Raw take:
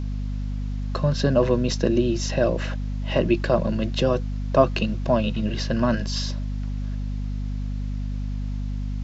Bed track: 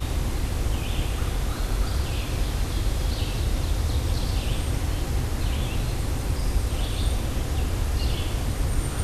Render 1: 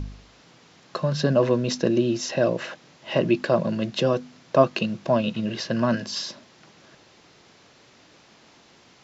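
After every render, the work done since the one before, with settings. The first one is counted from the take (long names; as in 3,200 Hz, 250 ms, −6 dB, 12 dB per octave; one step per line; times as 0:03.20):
hum removal 50 Hz, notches 5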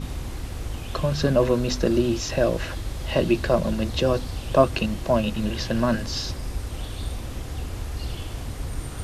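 mix in bed track −6 dB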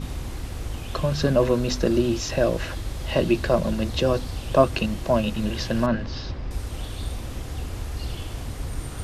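0:05.86–0:06.51: high-frequency loss of the air 220 metres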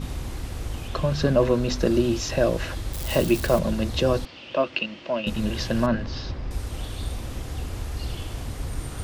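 0:00.88–0:01.79: high-shelf EQ 7,500 Hz −7 dB
0:02.93–0:03.59: spike at every zero crossing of −23.5 dBFS
0:04.25–0:05.27: loudspeaker in its box 360–4,400 Hz, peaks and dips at 430 Hz −9 dB, 750 Hz −9 dB, 1,100 Hz −6 dB, 1,600 Hz −4 dB, 2,800 Hz +5 dB, 3,900 Hz −5 dB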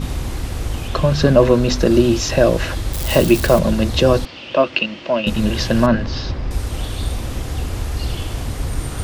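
level +8 dB
brickwall limiter −1 dBFS, peak gain reduction 2 dB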